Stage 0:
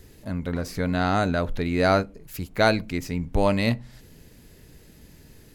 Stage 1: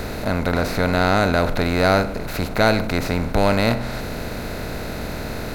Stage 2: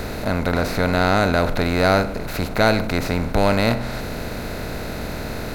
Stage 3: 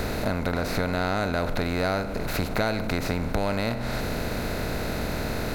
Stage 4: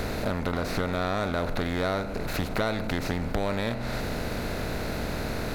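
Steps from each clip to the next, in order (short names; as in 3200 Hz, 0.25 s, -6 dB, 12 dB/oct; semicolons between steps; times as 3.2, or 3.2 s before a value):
per-bin compression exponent 0.4
nothing audible
compressor, threshold -22 dBFS, peak gain reduction 10 dB
Doppler distortion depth 0.33 ms; gain -2 dB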